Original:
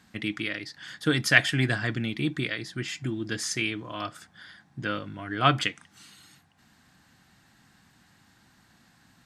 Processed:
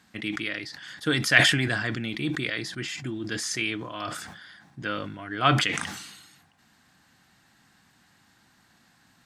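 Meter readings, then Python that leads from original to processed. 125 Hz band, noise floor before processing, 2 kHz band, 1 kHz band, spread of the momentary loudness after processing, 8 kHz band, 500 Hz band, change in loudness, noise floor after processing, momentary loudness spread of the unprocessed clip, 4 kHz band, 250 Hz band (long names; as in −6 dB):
−0.5 dB, −62 dBFS, +2.0 dB, +1.0 dB, 16 LU, +2.5 dB, +0.5 dB, +1.5 dB, −62 dBFS, 15 LU, +3.5 dB, 0.0 dB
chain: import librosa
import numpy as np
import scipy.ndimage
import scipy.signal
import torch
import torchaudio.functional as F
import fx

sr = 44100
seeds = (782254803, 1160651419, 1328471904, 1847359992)

y = fx.low_shelf(x, sr, hz=220.0, db=-5.5)
y = fx.sustainer(y, sr, db_per_s=48.0)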